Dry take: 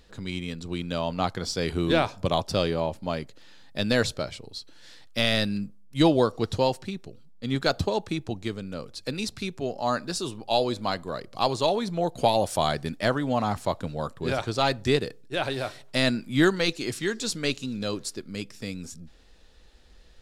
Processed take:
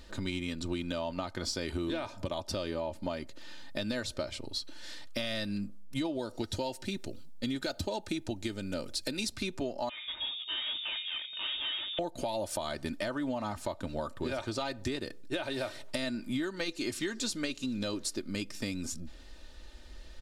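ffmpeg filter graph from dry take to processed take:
ffmpeg -i in.wav -filter_complex "[0:a]asettb=1/sr,asplit=3[link_01][link_02][link_03];[link_01]atrim=end=6.194[link_04];[link_02]atrim=start=6.19:end=9.36,asetpts=PTS-STARTPTS,afade=type=in:duration=0.004:curve=qsin,afade=type=out:start_time=3.166:duration=0.004:curve=qsin,asuperstop=centerf=1100:order=4:qfactor=4.8,highshelf=frequency=4800:gain=7[link_05];[link_03]atrim=start=9.356[link_06];[link_04][link_05]acrossfade=duration=0.004:curve1=hsin:curve2=qsin[link_07];[link_07][link_06]acrossfade=duration=0.004:curve1=qsin:curve2=hsin,asettb=1/sr,asplit=3[link_08][link_09][link_10];[link_08]atrim=end=9.894[link_11];[link_09]atrim=start=9.89:end=11.99,asetpts=PTS-STARTPTS,afade=type=in:duration=0.004:curve=qsin,afade=type=out:start_time=2.096:duration=0.004:curve=qsin,bandreject=frequency=63.09:width_type=h:width=4,bandreject=frequency=126.18:width_type=h:width=4,bandreject=frequency=189.27:width_type=h:width=4,bandreject=frequency=252.36:width_type=h:width=4,bandreject=frequency=315.45:width_type=h:width=4,bandreject=frequency=378.54:width_type=h:width=4,bandreject=frequency=441.63:width_type=h:width=4,bandreject=frequency=504.72:width_type=h:width=4,bandreject=frequency=567.81:width_type=h:width=4,bandreject=frequency=630.9:width_type=h:width=4,bandreject=frequency=693.99:width_type=h:width=4,bandreject=frequency=757.08:width_type=h:width=4,bandreject=frequency=820.17:width_type=h:width=4,bandreject=frequency=883.26:width_type=h:width=4,bandreject=frequency=946.35:width_type=h:width=4,bandreject=frequency=1009.44:width_type=h:width=4,bandreject=frequency=1072.53:width_type=h:width=4,bandreject=frequency=1135.62:width_type=h:width=4,bandreject=frequency=1198.71:width_type=h:width=4,bandreject=frequency=1261.8:width_type=h:width=4,bandreject=frequency=1324.89:width_type=h:width=4,bandreject=frequency=1387.98:width_type=h:width=4,bandreject=frequency=1451.07:width_type=h:width=4,bandreject=frequency=1514.16:width_type=h:width=4,bandreject=frequency=1577.25:width_type=h:width=4,bandreject=frequency=1640.34:width_type=h:width=4,bandreject=frequency=1703.43:width_type=h:width=4,aeval=exprs='(tanh(70.8*val(0)+0.2)-tanh(0.2))/70.8':channel_layout=same,lowpass=frequency=3100:width_type=q:width=0.5098,lowpass=frequency=3100:width_type=q:width=0.6013,lowpass=frequency=3100:width_type=q:width=0.9,lowpass=frequency=3100:width_type=q:width=2.563,afreqshift=-3700[link_12];[link_10]atrim=start=11.986[link_13];[link_11][link_12]acrossfade=duration=0.004:curve1=hsin:curve2=qsin[link_14];[link_14][link_13]acrossfade=duration=0.004:curve1=qsin:curve2=hsin,alimiter=limit=-19.5dB:level=0:latency=1:release=367,aecho=1:1:3.3:0.57,acompressor=threshold=-34dB:ratio=6,volume=3dB" out.wav

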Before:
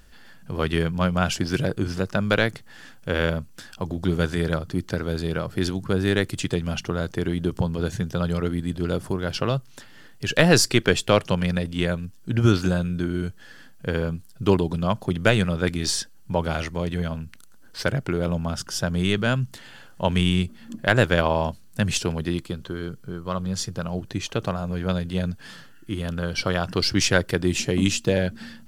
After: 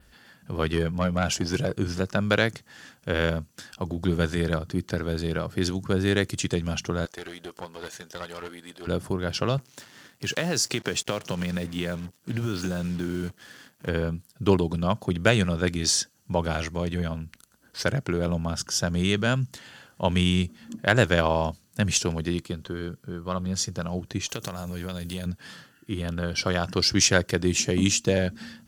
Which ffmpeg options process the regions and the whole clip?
ffmpeg -i in.wav -filter_complex "[0:a]asettb=1/sr,asplit=3[link_01][link_02][link_03];[link_01]atrim=end=0.704[link_04];[link_02]atrim=start=0.7:end=1.72,asetpts=PTS-STARTPTS,afade=type=in:duration=0.004:curve=qsin,afade=type=out:start_time=1.016:duration=0.004:curve=qsin,equalizer=frequency=610:width_type=o:width=1.7:gain=3,aeval=exprs='(tanh(3.98*val(0)+0.35)-tanh(0.35))/3.98':channel_layout=same[link_05];[link_03]atrim=start=1.716[link_06];[link_04][link_05]acrossfade=duration=0.004:curve1=hsin:curve2=qsin[link_07];[link_07][link_06]acrossfade=duration=0.004:curve1=qsin:curve2=hsin,asettb=1/sr,asplit=3[link_08][link_09][link_10];[link_08]atrim=end=7.054[link_11];[link_09]atrim=start=7.05:end=8.87,asetpts=PTS-STARTPTS,afade=type=in:duration=0.004:curve=qsin,afade=type=out:start_time=1.816:duration=0.004:curve=qsin,highpass=600,aeval=exprs='clip(val(0),-1,0.0126)':channel_layout=same[link_12];[link_10]atrim=start=8.866[link_13];[link_11][link_12]acrossfade=duration=0.004:curve1=hsin:curve2=qsin[link_14];[link_14][link_13]acrossfade=duration=0.004:curve1=qsin:curve2=hsin,asettb=1/sr,asplit=3[link_15][link_16][link_17];[link_15]atrim=end=9.584[link_18];[link_16]atrim=start=9.58:end=13.89,asetpts=PTS-STARTPTS,afade=type=in:duration=0.004:curve=qsin,afade=type=out:start_time=4.306:duration=0.004:curve=qsin,acompressor=threshold=-21dB:ratio=6:attack=3.2:release=140:knee=1:detection=peak,acrusher=bits=6:mix=0:aa=0.5,highpass=100[link_19];[link_17]atrim=start=13.886[link_20];[link_18][link_19]acrossfade=duration=0.004:curve1=hsin:curve2=qsin[link_21];[link_21][link_20]acrossfade=duration=0.004:curve1=qsin:curve2=hsin,asettb=1/sr,asplit=3[link_22][link_23][link_24];[link_22]atrim=end=24.294[link_25];[link_23]atrim=start=24.29:end=25.26,asetpts=PTS-STARTPTS,afade=type=in:duration=0.004:curve=qsin,afade=type=out:start_time=0.966:duration=0.004:curve=qsin,acompressor=threshold=-26dB:ratio=6:attack=3.2:release=140:knee=1:detection=peak,aemphasis=mode=production:type=75fm[link_26];[link_24]atrim=start=25.256[link_27];[link_25][link_26]acrossfade=duration=0.004:curve1=hsin:curve2=qsin[link_28];[link_28][link_27]acrossfade=duration=0.004:curve1=qsin:curve2=hsin,highpass=42,adynamicequalizer=threshold=0.00562:dfrequency=6300:dqfactor=2:tfrequency=6300:tqfactor=2:attack=5:release=100:ratio=0.375:range=3.5:mode=boostabove:tftype=bell,volume=-1.5dB" out.wav

